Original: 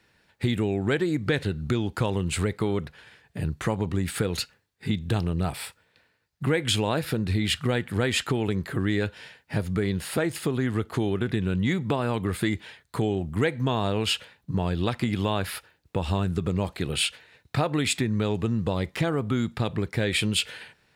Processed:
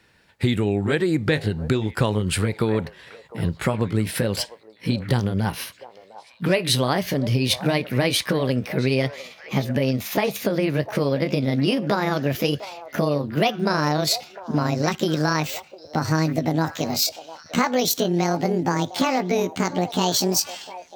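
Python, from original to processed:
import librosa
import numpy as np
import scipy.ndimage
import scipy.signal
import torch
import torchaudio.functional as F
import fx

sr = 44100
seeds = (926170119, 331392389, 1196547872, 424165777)

y = fx.pitch_glide(x, sr, semitones=10.5, runs='starting unshifted')
y = fx.echo_stepped(y, sr, ms=704, hz=700.0, octaves=1.4, feedback_pct=70, wet_db=-11)
y = y * 10.0 ** (5.0 / 20.0)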